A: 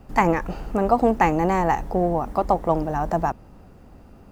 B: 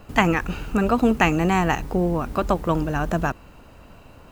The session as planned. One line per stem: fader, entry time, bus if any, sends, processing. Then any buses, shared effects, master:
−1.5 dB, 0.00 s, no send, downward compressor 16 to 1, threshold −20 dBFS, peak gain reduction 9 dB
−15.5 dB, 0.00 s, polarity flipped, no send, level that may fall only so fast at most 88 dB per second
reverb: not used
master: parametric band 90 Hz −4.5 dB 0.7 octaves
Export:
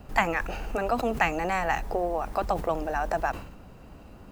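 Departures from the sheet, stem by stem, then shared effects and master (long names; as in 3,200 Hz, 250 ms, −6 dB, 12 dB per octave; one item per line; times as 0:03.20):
stem B −15.5 dB → −7.5 dB
master: missing parametric band 90 Hz −4.5 dB 0.7 octaves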